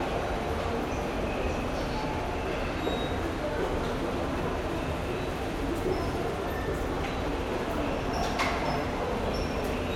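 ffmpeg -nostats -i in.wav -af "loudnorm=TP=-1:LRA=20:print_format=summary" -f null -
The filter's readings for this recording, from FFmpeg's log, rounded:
Input Integrated:    -30.7 LUFS
Input True Peak:     -16.7 dBTP
Input LRA:             0.9 LU
Input Threshold:     -40.7 LUFS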